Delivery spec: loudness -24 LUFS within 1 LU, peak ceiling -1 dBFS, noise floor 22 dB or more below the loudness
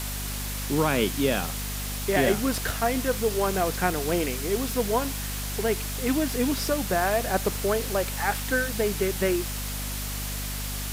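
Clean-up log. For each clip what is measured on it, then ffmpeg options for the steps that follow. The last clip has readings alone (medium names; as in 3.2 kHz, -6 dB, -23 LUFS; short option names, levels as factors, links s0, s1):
hum 50 Hz; highest harmonic 250 Hz; hum level -31 dBFS; noise floor -32 dBFS; noise floor target -49 dBFS; loudness -26.5 LUFS; peak level -9.0 dBFS; loudness target -24.0 LUFS
-> -af "bandreject=f=50:t=h:w=4,bandreject=f=100:t=h:w=4,bandreject=f=150:t=h:w=4,bandreject=f=200:t=h:w=4,bandreject=f=250:t=h:w=4"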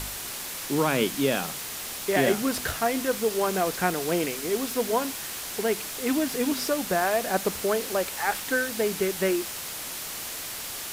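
hum not found; noise floor -36 dBFS; noise floor target -49 dBFS
-> -af "afftdn=nr=13:nf=-36"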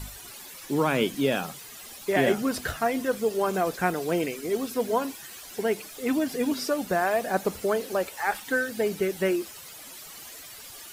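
noise floor -44 dBFS; noise floor target -49 dBFS
-> -af "afftdn=nr=6:nf=-44"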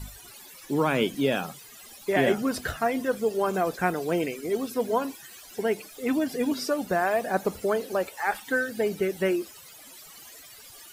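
noise floor -48 dBFS; noise floor target -50 dBFS
-> -af "afftdn=nr=6:nf=-48"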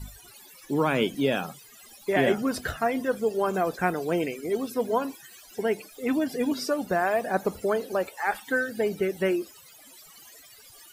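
noise floor -51 dBFS; loudness -27.5 LUFS; peak level -10.0 dBFS; loudness target -24.0 LUFS
-> -af "volume=1.5"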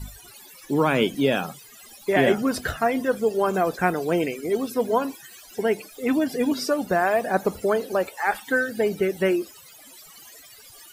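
loudness -24.0 LUFS; peak level -6.5 dBFS; noise floor -48 dBFS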